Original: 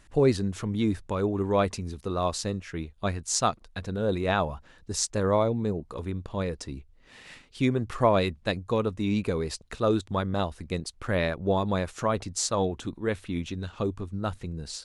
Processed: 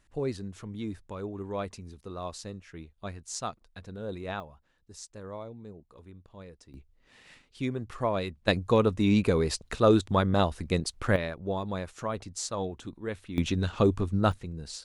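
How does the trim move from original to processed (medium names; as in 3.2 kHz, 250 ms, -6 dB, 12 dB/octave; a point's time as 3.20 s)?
-10 dB
from 4.40 s -17 dB
from 6.74 s -7 dB
from 8.48 s +3.5 dB
from 11.16 s -6.5 dB
from 13.38 s +6 dB
from 14.32 s -3 dB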